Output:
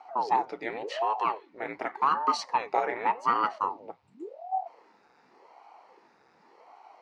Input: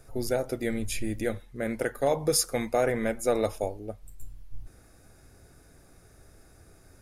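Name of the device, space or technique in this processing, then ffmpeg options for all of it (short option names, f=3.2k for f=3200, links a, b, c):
voice changer toy: -af "aeval=exprs='val(0)*sin(2*PI*410*n/s+410*0.85/0.88*sin(2*PI*0.88*n/s))':c=same,highpass=550,equalizer=f=600:t=q:w=4:g=-8,equalizer=f=890:t=q:w=4:g=8,equalizer=f=1.6k:t=q:w=4:g=-4,equalizer=f=3.4k:t=q:w=4:g=-7,lowpass=f=4.1k:w=0.5412,lowpass=f=4.1k:w=1.3066,volume=5dB"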